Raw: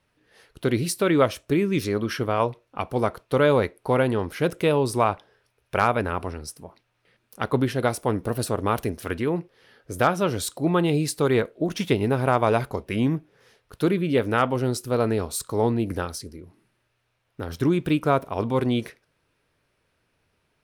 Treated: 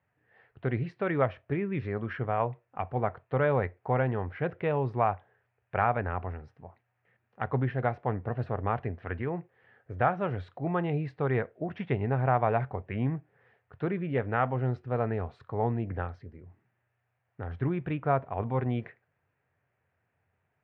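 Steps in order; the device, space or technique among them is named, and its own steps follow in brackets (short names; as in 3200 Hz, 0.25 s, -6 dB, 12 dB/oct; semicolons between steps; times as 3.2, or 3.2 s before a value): bass cabinet (speaker cabinet 77–2400 Hz, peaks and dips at 90 Hz +10 dB, 130 Hz +7 dB, 310 Hz -5 dB, 750 Hz +8 dB, 1800 Hz +6 dB); gain -8.5 dB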